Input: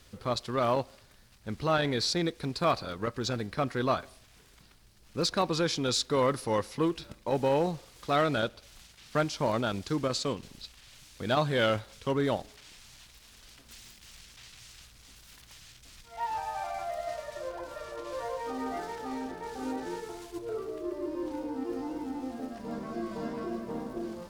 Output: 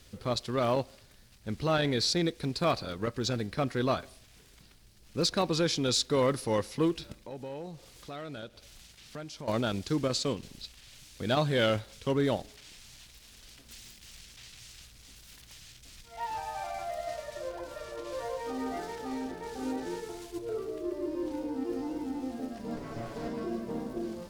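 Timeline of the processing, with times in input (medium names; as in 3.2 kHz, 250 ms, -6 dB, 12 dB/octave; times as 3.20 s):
7.17–9.48 s: compression 2:1, threshold -49 dBFS
22.76–23.28 s: comb filter that takes the minimum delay 7.1 ms
whole clip: peaking EQ 1.1 kHz -5 dB 1.4 oct; trim +1.5 dB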